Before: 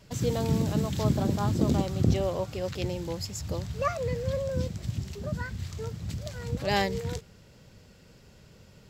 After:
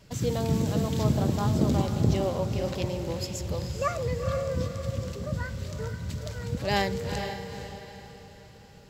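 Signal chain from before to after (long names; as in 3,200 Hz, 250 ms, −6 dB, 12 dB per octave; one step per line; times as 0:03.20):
feedback delay with all-pass diffusion 464 ms, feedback 42%, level −7 dB
on a send at −17.5 dB: convolution reverb RT60 0.75 s, pre-delay 49 ms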